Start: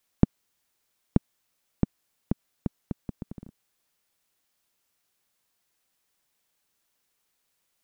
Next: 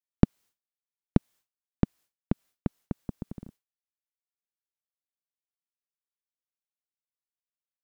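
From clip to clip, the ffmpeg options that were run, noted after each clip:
-af "agate=range=0.0224:threshold=0.00398:ratio=3:detection=peak,volume=1.12"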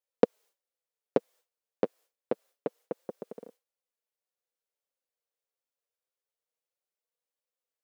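-af "highpass=f=490:t=q:w=4.9,flanger=delay=3.4:depth=6.2:regen=-18:speed=0.27:shape=triangular,volume=1.58"

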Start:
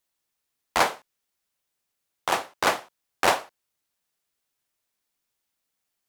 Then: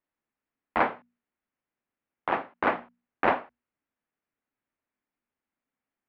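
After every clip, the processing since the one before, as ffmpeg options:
-af "lowpass=f=2300:w=0.5412,lowpass=f=2300:w=1.3066,equalizer=f=250:t=o:w=0.6:g=9.5,bandreject=f=60:t=h:w=6,bandreject=f=120:t=h:w=6,bandreject=f=180:t=h:w=6,bandreject=f=240:t=h:w=6,volume=0.75"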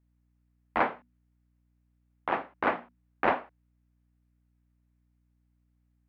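-af "aeval=exprs='val(0)+0.000447*(sin(2*PI*60*n/s)+sin(2*PI*2*60*n/s)/2+sin(2*PI*3*60*n/s)/3+sin(2*PI*4*60*n/s)/4+sin(2*PI*5*60*n/s)/5)':c=same,volume=0.794"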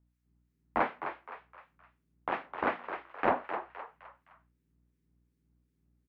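-filter_complex "[0:a]acrossover=split=1500[s0][s1];[s0]aeval=exprs='val(0)*(1-0.7/2+0.7/2*cos(2*PI*2.7*n/s))':c=same[s2];[s1]aeval=exprs='val(0)*(1-0.7/2-0.7/2*cos(2*PI*2.7*n/s))':c=same[s3];[s2][s3]amix=inputs=2:normalize=0,asplit=2[s4][s5];[s5]asplit=4[s6][s7][s8][s9];[s6]adelay=258,afreqshift=99,volume=0.355[s10];[s7]adelay=516,afreqshift=198,volume=0.135[s11];[s8]adelay=774,afreqshift=297,volume=0.0513[s12];[s9]adelay=1032,afreqshift=396,volume=0.0195[s13];[s10][s11][s12][s13]amix=inputs=4:normalize=0[s14];[s4][s14]amix=inputs=2:normalize=0"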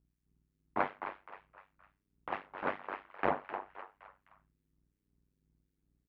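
-af "tremolo=f=98:d=0.947"

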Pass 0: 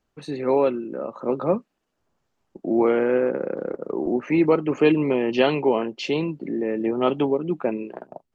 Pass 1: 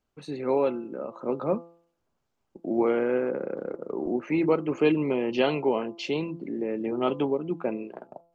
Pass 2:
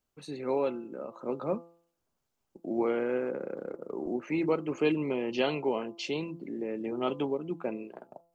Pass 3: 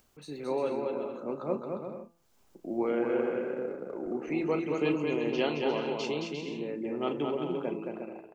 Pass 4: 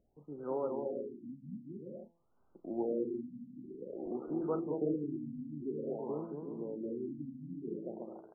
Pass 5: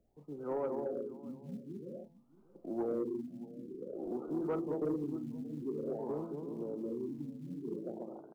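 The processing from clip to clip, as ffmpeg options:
-af "bandreject=f=1800:w=15,bandreject=f=169.5:t=h:w=4,bandreject=f=339:t=h:w=4,bandreject=f=508.5:t=h:w=4,bandreject=f=678:t=h:w=4,bandreject=f=847.5:t=h:w=4,bandreject=f=1017:t=h:w=4,bandreject=f=1186.5:t=h:w=4,bandreject=f=1356:t=h:w=4,volume=0.596"
-af "highshelf=f=5200:g=10.5,volume=0.562"
-filter_complex "[0:a]asplit=2[s0][s1];[s1]adelay=34,volume=0.251[s2];[s0][s2]amix=inputs=2:normalize=0,acompressor=mode=upward:threshold=0.00282:ratio=2.5,aecho=1:1:220|352|431.2|478.7|507.2:0.631|0.398|0.251|0.158|0.1,volume=0.794"
-af "afftfilt=real='re*lt(b*sr/1024,280*pow(1600/280,0.5+0.5*sin(2*PI*0.51*pts/sr)))':imag='im*lt(b*sr/1024,280*pow(1600/280,0.5+0.5*sin(2*PI*0.51*pts/sr)))':win_size=1024:overlap=0.75,volume=0.562"
-filter_complex "[0:a]acrossover=split=220[s0][s1];[s0]acrusher=bits=6:mode=log:mix=0:aa=0.000001[s2];[s2][s1]amix=inputs=2:normalize=0,aecho=1:1:629:0.1,asoftclip=type=tanh:threshold=0.0422,volume=1.12"

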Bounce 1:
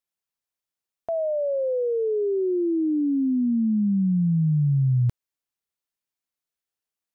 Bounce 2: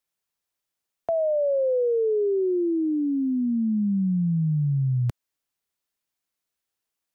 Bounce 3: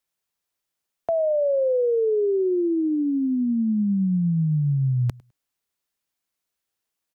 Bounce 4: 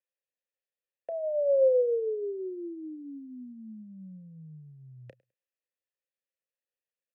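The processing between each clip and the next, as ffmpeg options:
-filter_complex "[0:a]acrossover=split=160|440[s0][s1][s2];[s0]acompressor=threshold=0.0251:ratio=4[s3];[s1]acompressor=threshold=0.0178:ratio=4[s4];[s2]acompressor=threshold=0.0355:ratio=4[s5];[s3][s4][s5]amix=inputs=3:normalize=0,volume=1.68"
-af "aecho=1:1:103|206:0.0668|0.012,volume=1.19"
-filter_complex "[0:a]asplit=3[s0][s1][s2];[s0]bandpass=f=530:t=q:w=8,volume=1[s3];[s1]bandpass=f=1840:t=q:w=8,volume=0.501[s4];[s2]bandpass=f=2480:t=q:w=8,volume=0.355[s5];[s3][s4][s5]amix=inputs=3:normalize=0,asplit=2[s6][s7];[s7]adelay=32,volume=0.2[s8];[s6][s8]amix=inputs=2:normalize=0"

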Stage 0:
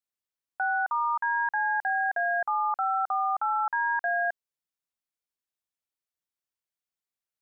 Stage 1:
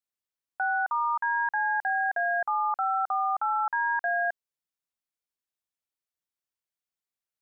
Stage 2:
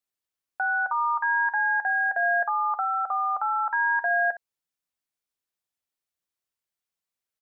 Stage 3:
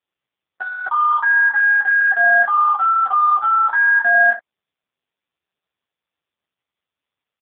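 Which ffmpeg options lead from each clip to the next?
-af anull
-af "aecho=1:1:11|63:0.237|0.2,volume=1.26"
-filter_complex "[0:a]asplit=2[s0][s1];[s1]asoftclip=type=tanh:threshold=0.0266,volume=0.398[s2];[s0][s2]amix=inputs=2:normalize=0,asplit=2[s3][s4];[s4]adelay=24,volume=0.794[s5];[s3][s5]amix=inputs=2:normalize=0,volume=2.11" -ar 8000 -c:a libopencore_amrnb -b:a 4750

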